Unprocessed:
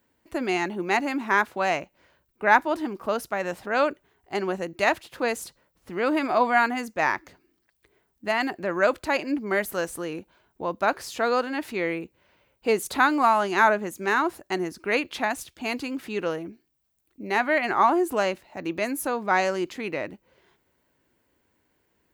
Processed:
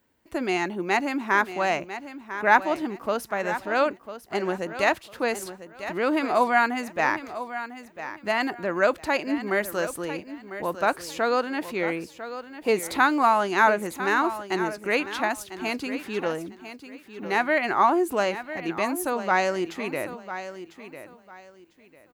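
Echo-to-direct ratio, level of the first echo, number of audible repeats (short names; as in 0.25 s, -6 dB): -11.5 dB, -12.0 dB, 2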